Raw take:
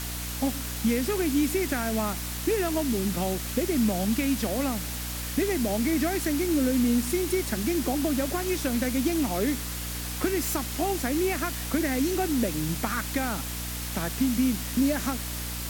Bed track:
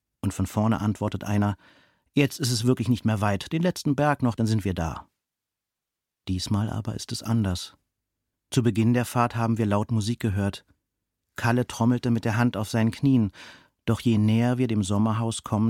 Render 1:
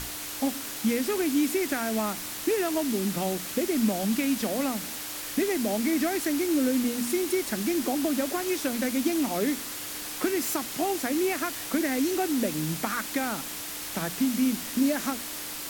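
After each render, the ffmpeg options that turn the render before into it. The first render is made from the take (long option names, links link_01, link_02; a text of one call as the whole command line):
ffmpeg -i in.wav -af "bandreject=frequency=60:width_type=h:width=6,bandreject=frequency=120:width_type=h:width=6,bandreject=frequency=180:width_type=h:width=6,bandreject=frequency=240:width_type=h:width=6" out.wav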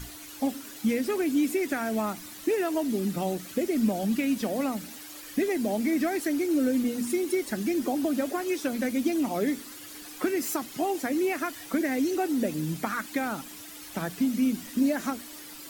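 ffmpeg -i in.wav -af "afftdn=noise_reduction=11:noise_floor=-37" out.wav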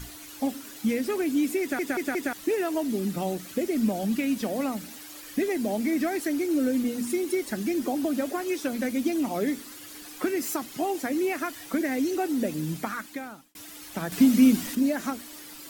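ffmpeg -i in.wav -filter_complex "[0:a]asplit=8[link_01][link_02][link_03][link_04][link_05][link_06][link_07][link_08];[link_01]atrim=end=1.792[link_09];[link_02]atrim=start=1.608:end=1.792[link_10];[link_03]atrim=start=1.608:end=1.792[link_11];[link_04]atrim=start=1.608:end=1.792[link_12];[link_05]atrim=start=2.328:end=13.55,asetpts=PTS-STARTPTS,afade=type=out:start_time=10.432:duration=0.79[link_13];[link_06]atrim=start=13.55:end=14.122,asetpts=PTS-STARTPTS,afade=type=in:duration=0.004:curve=hsin[link_14];[link_07]atrim=start=14.118:end=14.752,asetpts=PTS-STARTPTS,volume=7.5dB[link_15];[link_08]atrim=start=14.748[link_16];[link_09][link_10]acrossfade=duration=0.004:curve1=hsin:curve2=hsin[link_17];[link_17][link_11]acrossfade=duration=0.004:curve1=hsin:curve2=hsin[link_18];[link_18][link_12]acrossfade=duration=0.004:curve1=hsin:curve2=hsin[link_19];[link_13][link_14]concat=n=2:v=0:a=1[link_20];[link_19][link_20]acrossfade=duration=0.004:curve1=hsin:curve2=hsin[link_21];[link_21][link_15]acrossfade=duration=0.004:curve1=hsin:curve2=hsin[link_22];[link_22][link_16]acrossfade=duration=0.004:curve1=hsin:curve2=hsin" out.wav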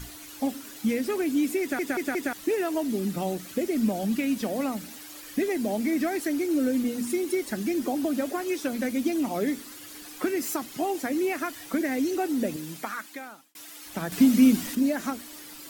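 ffmpeg -i in.wav -filter_complex "[0:a]asettb=1/sr,asplit=3[link_01][link_02][link_03];[link_01]atrim=end=12.564[link_04];[link_02]atrim=start=12.56:end=13.86,asetpts=PTS-STARTPTS,afade=type=in:duration=0.004:curve=qsin,afade=type=out:start_time=1.296:duration=0.004:curve=qsin,highpass=frequency=500:poles=1[link_05];[link_03]atrim=start=13.856[link_06];[link_04][link_05]acrossfade=duration=0.004:curve1=hsin:curve2=qsin[link_07];[link_07][link_06]acrossfade=duration=0.004:curve1=qsin:curve2=hsin" out.wav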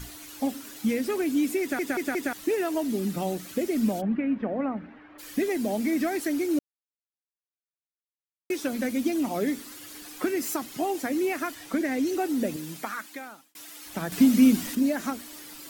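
ffmpeg -i in.wav -filter_complex "[0:a]asplit=3[link_01][link_02][link_03];[link_01]afade=type=out:start_time=4:duration=0.02[link_04];[link_02]lowpass=frequency=2000:width=0.5412,lowpass=frequency=2000:width=1.3066,afade=type=in:start_time=4:duration=0.02,afade=type=out:start_time=5.18:duration=0.02[link_05];[link_03]afade=type=in:start_time=5.18:duration=0.02[link_06];[link_04][link_05][link_06]amix=inputs=3:normalize=0,asettb=1/sr,asplit=3[link_07][link_08][link_09];[link_07]atrim=end=11.544[link_10];[link_08]atrim=start=11.54:end=12.07,asetpts=PTS-STARTPTS,afade=type=in:duration=0.004:curve=qsin,afade=type=out:start_time=0.526:duration=0.004:curve=qsin,highshelf=frequency=11000:gain=-7.5[link_11];[link_09]atrim=start=12.066[link_12];[link_10][link_11]acrossfade=duration=0.004:curve1=hsin:curve2=qsin[link_13];[link_13][link_12]acrossfade=duration=0.004:curve1=qsin:curve2=hsin,asplit=3[link_14][link_15][link_16];[link_14]atrim=end=6.59,asetpts=PTS-STARTPTS,afade=type=out:start_time=6.586:duration=0.004:curve=hsin[link_17];[link_15]atrim=start=6.59:end=8.5,asetpts=PTS-STARTPTS,volume=0[link_18];[link_16]atrim=start=8.5,asetpts=PTS-STARTPTS,afade=type=in:duration=0.004:curve=hsin[link_19];[link_17][link_18][link_19]concat=n=3:v=0:a=1" out.wav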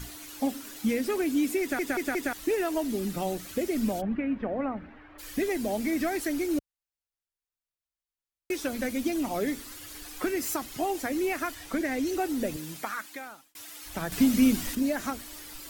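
ffmpeg -i in.wav -af "asubboost=boost=7.5:cutoff=70" out.wav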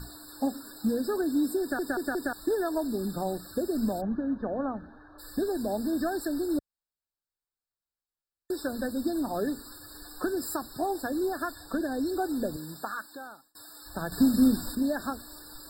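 ffmpeg -i in.wav -af "aeval=exprs='0.282*(cos(1*acos(clip(val(0)/0.282,-1,1)))-cos(1*PI/2))+0.00316*(cos(7*acos(clip(val(0)/0.282,-1,1)))-cos(7*PI/2))':channel_layout=same,afftfilt=real='re*eq(mod(floor(b*sr/1024/1800),2),0)':imag='im*eq(mod(floor(b*sr/1024/1800),2),0)':win_size=1024:overlap=0.75" out.wav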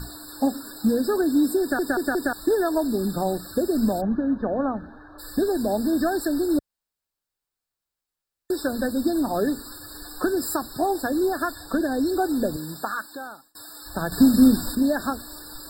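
ffmpeg -i in.wav -af "volume=6.5dB" out.wav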